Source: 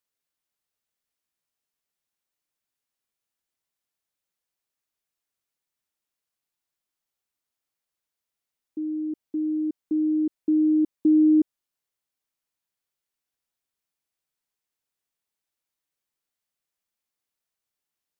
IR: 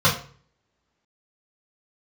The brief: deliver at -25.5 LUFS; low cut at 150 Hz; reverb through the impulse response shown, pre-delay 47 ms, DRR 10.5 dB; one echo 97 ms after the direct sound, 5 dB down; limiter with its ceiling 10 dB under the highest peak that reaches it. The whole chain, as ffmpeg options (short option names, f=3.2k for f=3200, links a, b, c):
-filter_complex "[0:a]highpass=150,alimiter=limit=-23.5dB:level=0:latency=1,aecho=1:1:97:0.562,asplit=2[a][b];[1:a]atrim=start_sample=2205,adelay=47[c];[b][c]afir=irnorm=-1:irlink=0,volume=-29.5dB[d];[a][d]amix=inputs=2:normalize=0,volume=0.5dB"